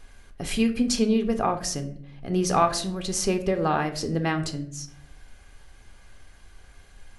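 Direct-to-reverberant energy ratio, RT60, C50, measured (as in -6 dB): 6.0 dB, 0.60 s, 12.0 dB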